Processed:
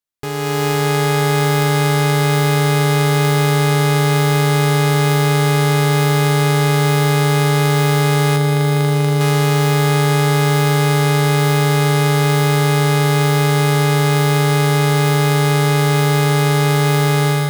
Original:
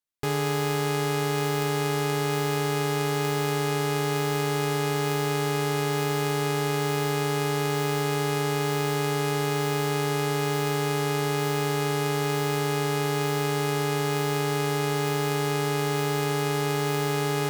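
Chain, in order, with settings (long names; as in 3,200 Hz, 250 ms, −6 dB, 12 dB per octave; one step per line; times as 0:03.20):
0:08.36–0:09.21: running median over 41 samples
automatic gain control gain up to 8 dB
on a send: feedback delay with all-pass diffusion 553 ms, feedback 57%, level −8 dB
on the sum: level +1.5 dB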